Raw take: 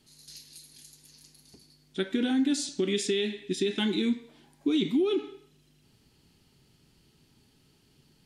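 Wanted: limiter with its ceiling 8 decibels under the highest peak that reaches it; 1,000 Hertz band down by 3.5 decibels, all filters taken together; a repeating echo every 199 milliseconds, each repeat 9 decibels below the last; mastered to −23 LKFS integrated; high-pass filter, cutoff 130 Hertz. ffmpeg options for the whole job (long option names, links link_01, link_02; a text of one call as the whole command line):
ffmpeg -i in.wav -af "highpass=130,equalizer=frequency=1000:width_type=o:gain=-5,alimiter=limit=-24dB:level=0:latency=1,aecho=1:1:199|398|597|796:0.355|0.124|0.0435|0.0152,volume=9.5dB" out.wav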